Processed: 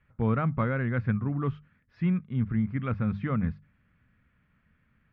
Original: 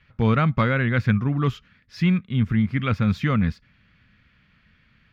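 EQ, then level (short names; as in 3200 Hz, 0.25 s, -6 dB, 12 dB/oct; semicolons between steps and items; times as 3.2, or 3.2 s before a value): LPF 1500 Hz 12 dB/oct; notches 50/100/150/200 Hz; -6.0 dB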